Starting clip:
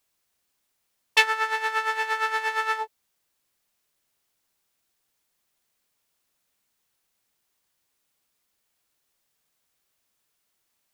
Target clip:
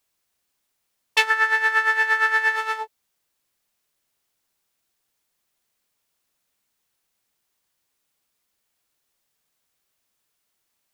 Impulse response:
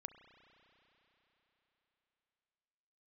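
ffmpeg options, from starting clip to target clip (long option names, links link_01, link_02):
-filter_complex "[0:a]asettb=1/sr,asplit=3[link_01][link_02][link_03];[link_01]atrim=end=1.304[link_04];[link_02]atrim=start=1.3:end=2.56,asetpts=PTS-STARTPTS,afade=type=in:duration=0.004:curve=qsin,afade=type=out:start_time=1.256:duration=0.004:curve=qsin,equalizer=frequency=1700:width=2.9:gain=10.5[link_05];[link_03]atrim=start=2.556[link_06];[link_04][link_05]acrossfade=duration=0.004:curve1=hsin:curve2=qsin[link_07];[link_07][link_06]acrossfade=duration=0.004:curve1=qsin:curve2=hsin"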